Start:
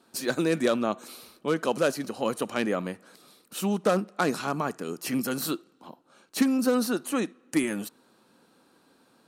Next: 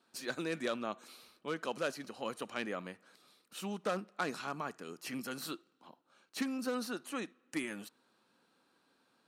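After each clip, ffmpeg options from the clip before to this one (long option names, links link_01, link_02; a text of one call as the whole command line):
ffmpeg -i in.wav -af "lowpass=frequency=2000:poles=1,tiltshelf=frequency=1300:gain=-7,volume=-7dB" out.wav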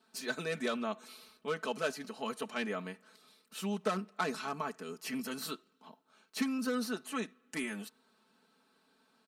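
ffmpeg -i in.wav -af "aecho=1:1:4.6:0.81" out.wav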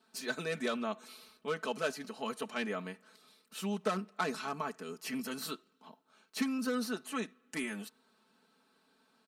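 ffmpeg -i in.wav -af anull out.wav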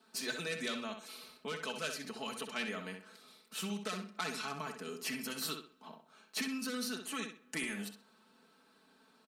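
ffmpeg -i in.wav -filter_complex "[0:a]acrossover=split=120|2000[link_01][link_02][link_03];[link_02]acompressor=threshold=-44dB:ratio=6[link_04];[link_01][link_04][link_03]amix=inputs=3:normalize=0,asplit=2[link_05][link_06];[link_06]adelay=64,lowpass=frequency=4000:poles=1,volume=-6dB,asplit=2[link_07][link_08];[link_08]adelay=64,lowpass=frequency=4000:poles=1,volume=0.32,asplit=2[link_09][link_10];[link_10]adelay=64,lowpass=frequency=4000:poles=1,volume=0.32,asplit=2[link_11][link_12];[link_12]adelay=64,lowpass=frequency=4000:poles=1,volume=0.32[link_13];[link_05][link_07][link_09][link_11][link_13]amix=inputs=5:normalize=0,volume=3dB" out.wav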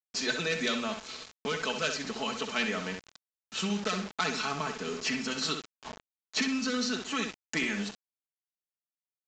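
ffmpeg -i in.wav -af "acrusher=bits=7:mix=0:aa=0.000001,aresample=16000,aresample=44100,volume=8dB" out.wav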